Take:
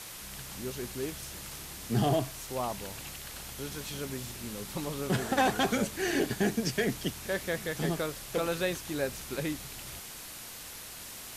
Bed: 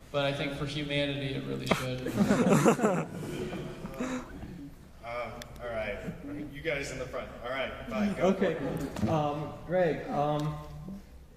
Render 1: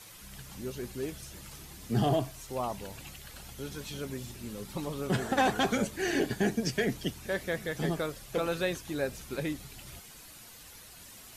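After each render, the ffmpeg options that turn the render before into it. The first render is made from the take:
-af "afftdn=nr=9:nf=-45"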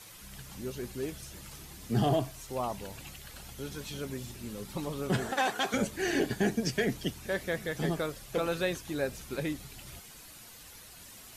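-filter_complex "[0:a]asettb=1/sr,asplit=3[a][b][c];[a]atrim=end=5.314[d];[b]atrim=start=5.31:end=5.74,asetpts=PTS-STARTPTS,afade=t=in:d=0.004:c=qsin,afade=t=out:st=0.426:d=0.004:c=qsin,highpass=f=740:p=1[e];[c]atrim=start=5.736[f];[d][e]acrossfade=d=0.004:c1=hsin:c2=qsin[g];[g][f]acrossfade=d=0.004:c1=qsin:c2=hsin"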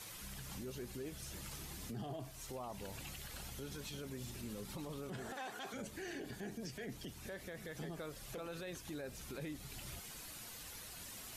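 -af "acompressor=threshold=-44dB:ratio=2,alimiter=level_in=13dB:limit=-24dB:level=0:latency=1:release=39,volume=-13dB"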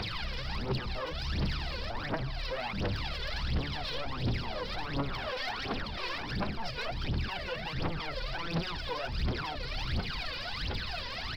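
-af "aresample=11025,aeval=exprs='0.015*sin(PI/2*3.55*val(0)/0.015)':c=same,aresample=44100,aphaser=in_gain=1:out_gain=1:delay=2.1:decay=0.78:speed=1.4:type=triangular"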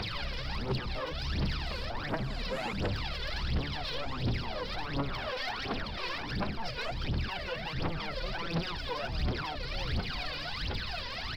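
-filter_complex "[1:a]volume=-20dB[a];[0:a][a]amix=inputs=2:normalize=0"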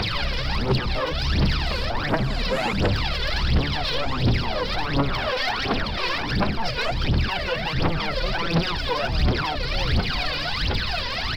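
-af "volume=11dB"

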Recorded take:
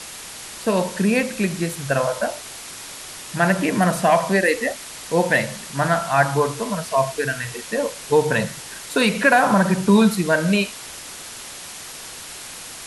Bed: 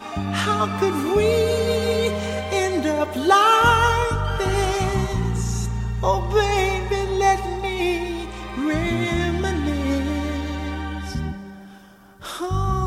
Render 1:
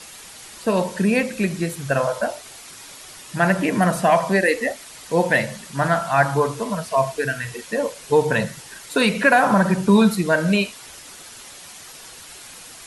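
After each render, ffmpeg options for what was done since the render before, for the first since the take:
-af "afftdn=nr=7:nf=-37"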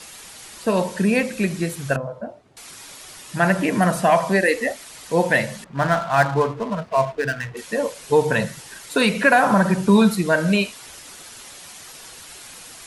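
-filter_complex "[0:a]asettb=1/sr,asplit=3[a][b][c];[a]atrim=end=1.964[d];[b]atrim=start=1.96:end=2.57,asetpts=PTS-STARTPTS,afade=t=in:d=0.004:c=qsin,afade=t=out:st=0.606:d=0.004:c=qsin,bandpass=f=160:t=q:w=0.79[e];[c]atrim=start=2.566[f];[d][e]acrossfade=d=0.004:c1=hsin:c2=qsin[g];[g][f]acrossfade=d=0.004:c1=qsin:c2=hsin,asettb=1/sr,asplit=3[h][i][j];[h]atrim=end=5.644[k];[i]atrim=start=5.64:end=7.57,asetpts=PTS-STARTPTS,afade=t=in:d=0.004:c=qsin,afade=t=out:st=1.926:d=0.004:c=qsin,adynamicsmooth=sensitivity=4:basefreq=870[l];[j]atrim=start=7.566[m];[k][l]acrossfade=d=0.004:c1=hsin:c2=qsin[n];[n][m]acrossfade=d=0.004:c1=qsin:c2=hsin"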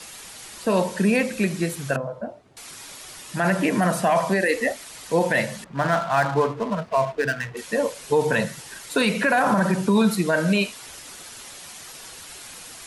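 -filter_complex "[0:a]acrossover=split=130[a][b];[a]acompressor=threshold=-43dB:ratio=6[c];[b]alimiter=limit=-11dB:level=0:latency=1:release=20[d];[c][d]amix=inputs=2:normalize=0"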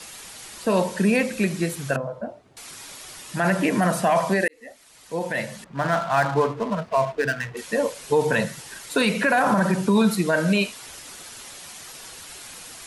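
-filter_complex "[0:a]asplit=2[a][b];[a]atrim=end=4.48,asetpts=PTS-STARTPTS,afade=t=out:st=4.476:d=0.004:c=hsin[c];[b]atrim=start=4.48,asetpts=PTS-STARTPTS,afade=t=in:d=1.62[d];[c][d]concat=n=2:v=0:a=1"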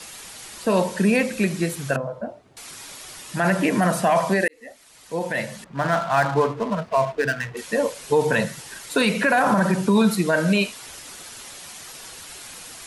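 -af "volume=1dB"

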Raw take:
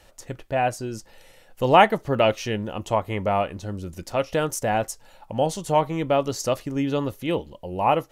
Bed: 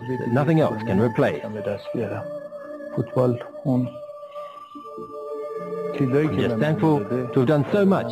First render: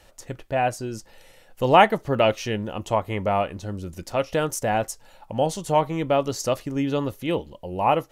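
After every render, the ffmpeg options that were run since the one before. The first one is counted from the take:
-af anull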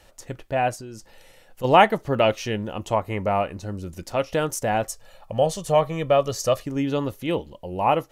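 -filter_complex "[0:a]asplit=3[a][b][c];[a]afade=t=out:st=0.75:d=0.02[d];[b]acompressor=threshold=-37dB:ratio=2.5:attack=3.2:release=140:knee=1:detection=peak,afade=t=in:st=0.75:d=0.02,afade=t=out:st=1.63:d=0.02[e];[c]afade=t=in:st=1.63:d=0.02[f];[d][e][f]amix=inputs=3:normalize=0,asettb=1/sr,asplit=3[g][h][i];[g]atrim=end=2.944[j];[h]atrim=start=2.94:end=3.83,asetpts=PTS-STARTPTS,afade=t=in:d=0.004:c=qsin,afade=t=out:st=0.886:d=0.004:c=qsin,bandreject=f=3.3k:w=6.1[k];[i]atrim=start=3.826[l];[j][k]acrossfade=d=0.004:c1=hsin:c2=qsin[m];[m][l]acrossfade=d=0.004:c1=qsin:c2=hsin,asettb=1/sr,asplit=3[n][o][p];[n]atrim=end=4.854[q];[o]atrim=start=4.85:end=6.64,asetpts=PTS-STARTPTS,afade=t=in:d=0.004:c=qsin,afade=t=out:st=1.786:d=0.004:c=qsin,aecho=1:1:1.7:0.5,atrim=end_sample=78939[r];[p]atrim=start=6.636[s];[q][r]acrossfade=d=0.004:c1=hsin:c2=qsin[t];[t][s]acrossfade=d=0.004:c1=qsin:c2=hsin"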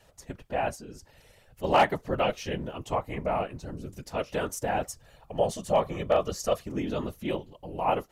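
-af "afftfilt=real='hypot(re,im)*cos(2*PI*random(0))':imag='hypot(re,im)*sin(2*PI*random(1))':win_size=512:overlap=0.75,volume=13.5dB,asoftclip=hard,volume=-13.5dB"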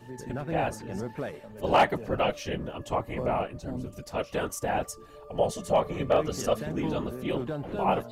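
-filter_complex "[1:a]volume=-15dB[a];[0:a][a]amix=inputs=2:normalize=0"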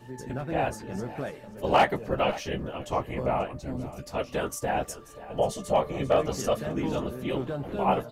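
-filter_complex "[0:a]asplit=2[a][b];[b]adelay=15,volume=-9dB[c];[a][c]amix=inputs=2:normalize=0,aecho=1:1:535:0.141"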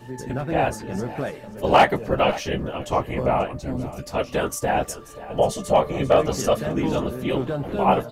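-af "volume=6dB"

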